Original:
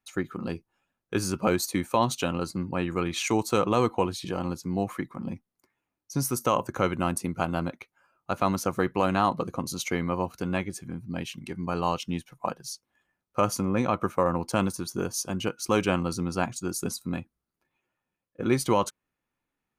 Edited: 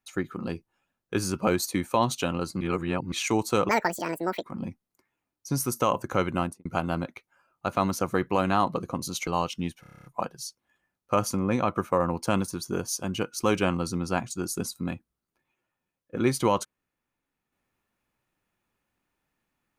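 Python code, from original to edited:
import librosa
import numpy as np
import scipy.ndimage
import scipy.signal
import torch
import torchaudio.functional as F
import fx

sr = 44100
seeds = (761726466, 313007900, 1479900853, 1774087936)

y = fx.studio_fade_out(x, sr, start_s=7.03, length_s=0.27)
y = fx.edit(y, sr, fx.reverse_span(start_s=2.61, length_s=0.51),
    fx.speed_span(start_s=3.69, length_s=1.39, speed=1.87),
    fx.cut(start_s=9.92, length_s=1.85),
    fx.stutter(start_s=12.3, slice_s=0.03, count=9), tone=tone)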